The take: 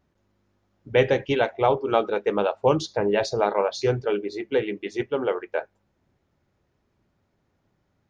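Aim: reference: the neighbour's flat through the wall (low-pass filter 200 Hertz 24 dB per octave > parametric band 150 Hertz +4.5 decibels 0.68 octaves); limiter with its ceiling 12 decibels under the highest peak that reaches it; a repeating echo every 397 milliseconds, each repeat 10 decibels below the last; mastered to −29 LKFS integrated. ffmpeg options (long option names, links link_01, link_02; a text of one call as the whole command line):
ffmpeg -i in.wav -af "alimiter=limit=-17.5dB:level=0:latency=1,lowpass=frequency=200:width=0.5412,lowpass=frequency=200:width=1.3066,equalizer=frequency=150:width_type=o:width=0.68:gain=4.5,aecho=1:1:397|794|1191|1588:0.316|0.101|0.0324|0.0104,volume=9dB" out.wav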